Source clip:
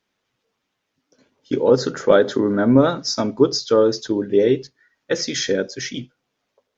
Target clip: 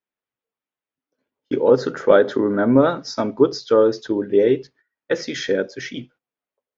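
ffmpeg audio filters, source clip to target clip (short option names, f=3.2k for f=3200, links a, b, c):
-af "agate=range=-17dB:threshold=-47dB:ratio=16:detection=peak,bass=f=250:g=-5,treble=f=4k:g=-13,volume=1dB"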